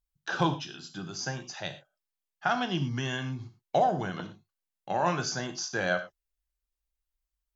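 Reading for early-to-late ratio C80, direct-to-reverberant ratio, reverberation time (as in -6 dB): 15.0 dB, 7.0 dB, no single decay rate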